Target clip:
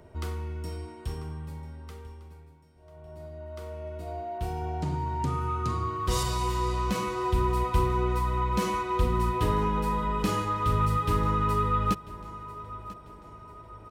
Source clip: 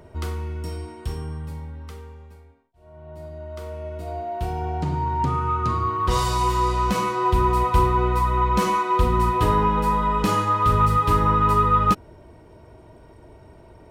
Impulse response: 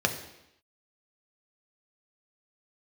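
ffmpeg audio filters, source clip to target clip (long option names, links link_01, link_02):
-filter_complex "[0:a]aecho=1:1:993|1986|2979|3972:0.126|0.0554|0.0244|0.0107,acrossover=split=760|1300[link_01][link_02][link_03];[link_02]acompressor=threshold=-38dB:ratio=6[link_04];[link_01][link_04][link_03]amix=inputs=3:normalize=0,asettb=1/sr,asplit=3[link_05][link_06][link_07];[link_05]atrim=end=4.384[link_08];[link_06]atrim=start=4.38:end=6.23,asetpts=PTS-STARTPTS,afade=type=in:duration=0.004:curve=qsin,afade=type=out:start_time=1.846:duration=0.004:curve=qsin,adynamicequalizer=threshold=0.00447:dfrequency=5000:dqfactor=0.7:tfrequency=5000:tqfactor=0.7:attack=5:release=100:ratio=0.375:range=3.5:mode=boostabove:tftype=highshelf[link_09];[link_07]atrim=start=6.226[link_10];[link_08][link_09]acrossfade=duration=0.004:curve1=hsin:curve2=qsin[link_11];[link_11][link_10]acrossfade=duration=0.004:curve1=qsin:curve2=hsin,volume=-5dB"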